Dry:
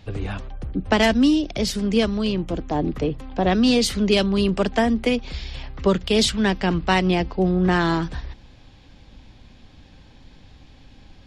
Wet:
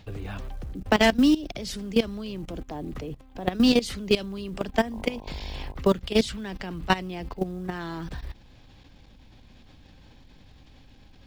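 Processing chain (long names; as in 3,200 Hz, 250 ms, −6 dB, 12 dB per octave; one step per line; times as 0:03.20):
output level in coarse steps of 17 dB
0:04.91–0:05.73: hum with harmonics 50 Hz, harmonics 21, −45 dBFS −1 dB per octave
floating-point word with a short mantissa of 4 bits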